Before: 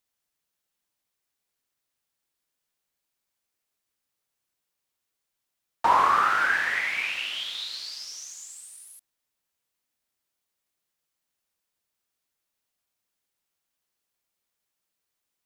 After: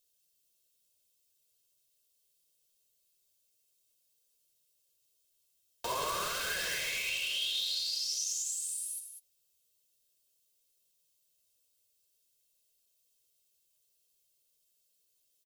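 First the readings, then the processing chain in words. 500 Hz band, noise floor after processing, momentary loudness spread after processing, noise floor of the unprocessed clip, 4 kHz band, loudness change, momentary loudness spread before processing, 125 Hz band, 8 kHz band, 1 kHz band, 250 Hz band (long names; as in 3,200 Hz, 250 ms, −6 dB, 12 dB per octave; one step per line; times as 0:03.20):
−4.0 dB, −75 dBFS, 9 LU, −83 dBFS, +0.5 dB, −8.5 dB, 20 LU, can't be measured, +6.5 dB, −17.0 dB, −8.5 dB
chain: flanger 0.47 Hz, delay 3.7 ms, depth 9.6 ms, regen +29%
high-shelf EQ 4,100 Hz +9 dB
in parallel at −9.5 dB: wrap-around overflow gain 26 dB
on the sum: flat-topped bell 1,300 Hz −13 dB
on a send: loudspeakers that aren't time-aligned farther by 31 metres −11 dB, 67 metres −9 dB
on the sum: brickwall limiter −26.5 dBFS, peak gain reduction 6.5 dB
comb filter 1.9 ms, depth 56%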